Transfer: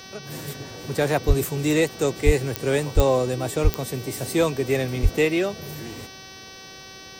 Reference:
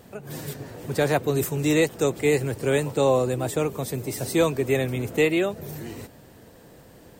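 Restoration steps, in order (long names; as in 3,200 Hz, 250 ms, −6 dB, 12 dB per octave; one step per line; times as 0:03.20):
click removal
hum removal 381.4 Hz, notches 16
high-pass at the plosives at 0:01.27/0:02.25/0:02.95/0:03.63/0:05.02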